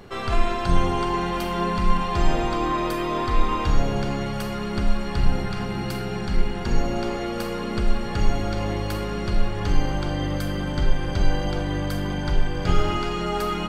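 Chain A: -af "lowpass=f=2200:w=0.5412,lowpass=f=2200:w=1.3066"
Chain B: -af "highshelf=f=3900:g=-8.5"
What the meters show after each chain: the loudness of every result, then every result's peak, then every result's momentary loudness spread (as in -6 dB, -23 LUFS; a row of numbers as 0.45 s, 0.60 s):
-26.5 LUFS, -26.5 LUFS; -6.0 dBFS, -6.0 dBFS; 4 LU, 4 LU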